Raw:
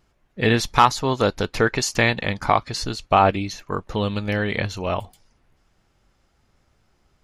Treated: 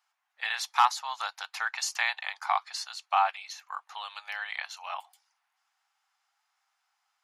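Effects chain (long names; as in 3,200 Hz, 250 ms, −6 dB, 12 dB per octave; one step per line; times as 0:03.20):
Chebyshev high-pass filter 770 Hz, order 5
level −6.5 dB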